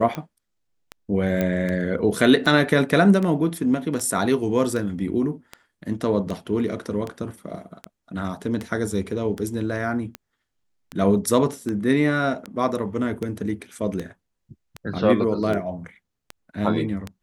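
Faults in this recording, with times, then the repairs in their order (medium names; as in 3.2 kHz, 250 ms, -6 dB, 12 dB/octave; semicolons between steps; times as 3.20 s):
tick 78 rpm -16 dBFS
1.41 s: pop -11 dBFS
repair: de-click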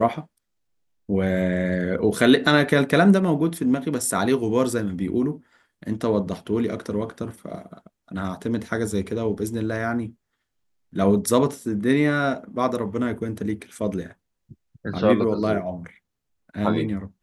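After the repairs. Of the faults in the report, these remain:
1.41 s: pop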